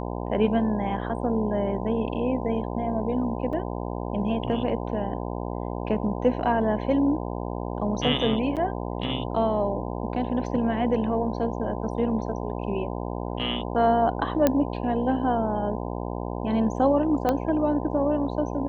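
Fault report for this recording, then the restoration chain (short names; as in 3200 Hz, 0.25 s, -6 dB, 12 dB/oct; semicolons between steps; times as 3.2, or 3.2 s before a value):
buzz 60 Hz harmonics 17 -31 dBFS
3.53 gap 4.1 ms
8.56–8.57 gap 7.7 ms
14.47 pop -7 dBFS
17.29 pop -11 dBFS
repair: de-click; de-hum 60 Hz, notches 17; interpolate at 3.53, 4.1 ms; interpolate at 8.56, 7.7 ms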